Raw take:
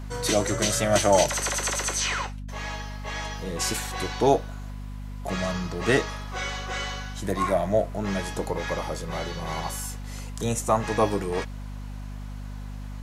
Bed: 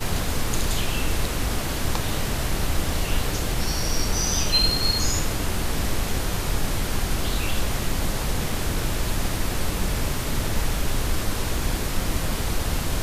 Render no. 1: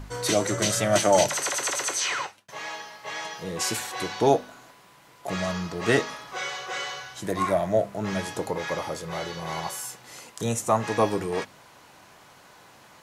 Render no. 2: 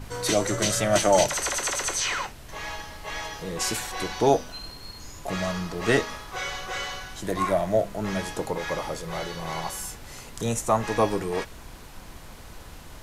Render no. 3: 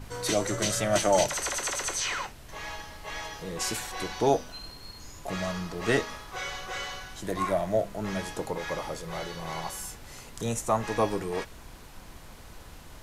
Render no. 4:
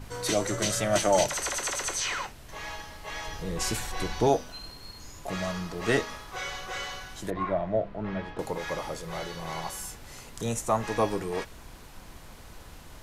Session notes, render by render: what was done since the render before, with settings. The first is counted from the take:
de-hum 50 Hz, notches 5
add bed -19.5 dB
trim -3.5 dB
3.27–4.27 s: bass shelf 150 Hz +11 dB; 7.30–8.39 s: distance through air 370 m

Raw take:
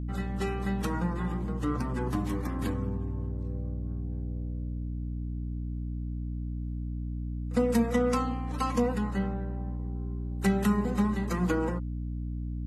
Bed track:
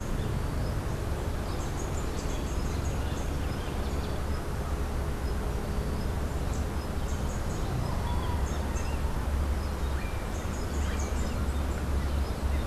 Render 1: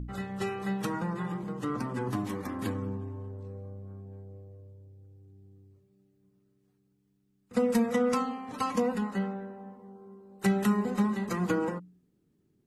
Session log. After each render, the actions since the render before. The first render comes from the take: de-hum 60 Hz, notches 5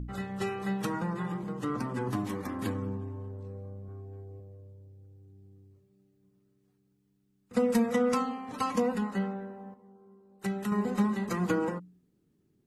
3.88–4.40 s: comb 2.7 ms; 9.74–10.72 s: gain -7 dB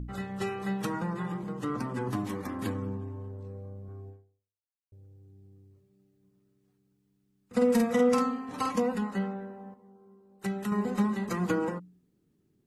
4.09–4.92 s: fade out exponential; 7.56–8.69 s: doubling 49 ms -4 dB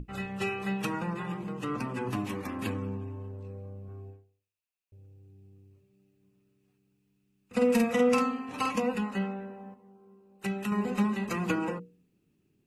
peaking EQ 2.6 kHz +13 dB 0.29 oct; hum notches 60/120/180/240/300/360/420/480 Hz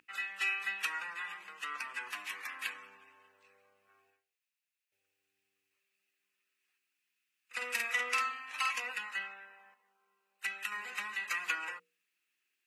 saturation -17 dBFS, distortion -21 dB; resonant high-pass 1.8 kHz, resonance Q 1.9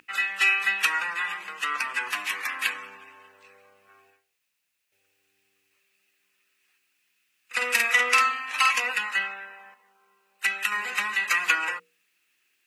trim +12 dB

